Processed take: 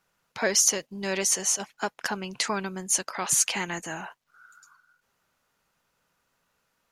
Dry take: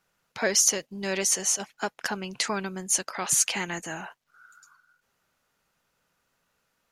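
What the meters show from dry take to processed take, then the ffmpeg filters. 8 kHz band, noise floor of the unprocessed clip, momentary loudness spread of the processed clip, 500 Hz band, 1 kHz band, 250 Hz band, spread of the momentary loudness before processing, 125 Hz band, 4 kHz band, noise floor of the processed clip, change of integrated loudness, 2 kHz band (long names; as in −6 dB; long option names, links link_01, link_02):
0.0 dB, −76 dBFS, 13 LU, 0.0 dB, +1.0 dB, 0.0 dB, 13 LU, 0.0 dB, 0.0 dB, −75 dBFS, 0.0 dB, 0.0 dB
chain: -af "equalizer=frequency=1000:width_type=o:width=0.41:gain=2.5"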